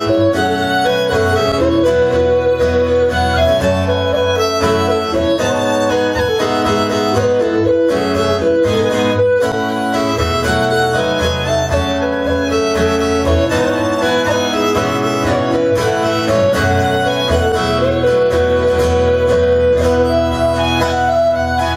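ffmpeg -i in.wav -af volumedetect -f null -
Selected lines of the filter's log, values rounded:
mean_volume: -13.7 dB
max_volume: -2.0 dB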